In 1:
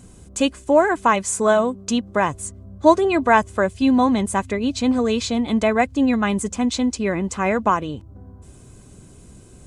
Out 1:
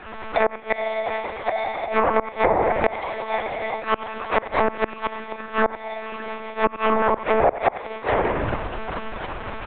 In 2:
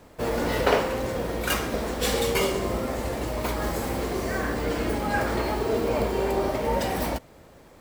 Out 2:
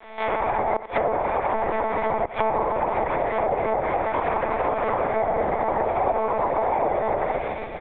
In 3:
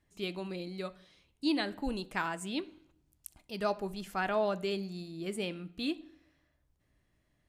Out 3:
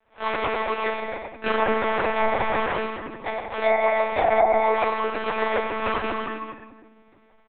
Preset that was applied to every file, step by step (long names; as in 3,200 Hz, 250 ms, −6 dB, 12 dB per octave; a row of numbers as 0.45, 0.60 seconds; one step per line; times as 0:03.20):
delay that plays each chunk backwards 122 ms, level −3 dB
decimation without filtering 31×
low-shelf EQ 120 Hz +5.5 dB
rectangular room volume 910 cubic metres, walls mixed, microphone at 2.9 metres
multi-voice chorus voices 4, 1.1 Hz, delay 27 ms, depth 3 ms
one-pitch LPC vocoder at 8 kHz 220 Hz
gate with flip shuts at −5 dBFS, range −27 dB
three-way crossover with the lows and the highs turned down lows −24 dB, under 520 Hz, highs −19 dB, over 3,100 Hz
single-tap delay 90 ms −17 dB
downward compressor 2 to 1, threshold −40 dBFS
treble cut that deepens with the level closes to 980 Hz, closed at −32 dBFS
loudness normalisation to −24 LKFS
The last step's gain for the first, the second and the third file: +19.0, +14.5, +19.0 decibels